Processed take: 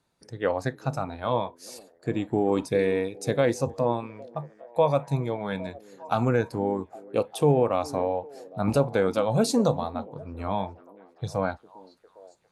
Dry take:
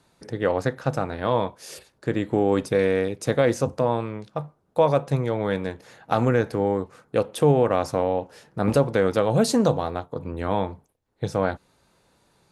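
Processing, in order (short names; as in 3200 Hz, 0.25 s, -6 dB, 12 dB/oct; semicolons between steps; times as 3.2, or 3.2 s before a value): delay with a stepping band-pass 0.404 s, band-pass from 320 Hz, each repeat 0.7 oct, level -10.5 dB; spectral noise reduction 9 dB; gain -2.5 dB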